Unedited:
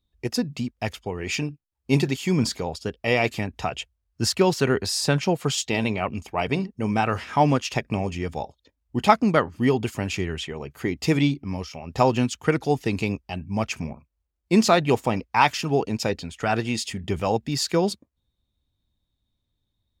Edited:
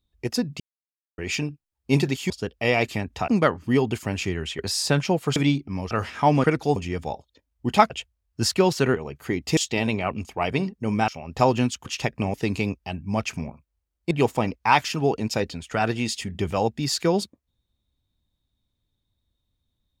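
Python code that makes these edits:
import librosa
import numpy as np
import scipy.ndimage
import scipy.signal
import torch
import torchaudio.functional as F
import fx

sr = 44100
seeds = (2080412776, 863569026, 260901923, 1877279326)

y = fx.edit(x, sr, fx.silence(start_s=0.6, length_s=0.58),
    fx.cut(start_s=2.3, length_s=0.43),
    fx.swap(start_s=3.71, length_s=1.06, other_s=9.2, other_length_s=1.31),
    fx.swap(start_s=5.54, length_s=1.51, other_s=11.12, other_length_s=0.55),
    fx.swap(start_s=7.58, length_s=0.48, other_s=12.45, other_length_s=0.32),
    fx.cut(start_s=14.54, length_s=0.26), tone=tone)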